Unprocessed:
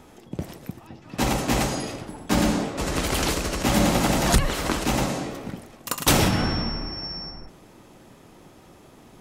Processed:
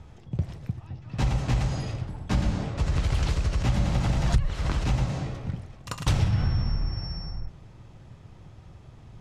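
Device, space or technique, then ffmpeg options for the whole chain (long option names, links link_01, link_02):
jukebox: -af "lowpass=5900,lowshelf=frequency=170:width_type=q:width=1.5:gain=14,acompressor=threshold=-16dB:ratio=3,volume=-5.5dB"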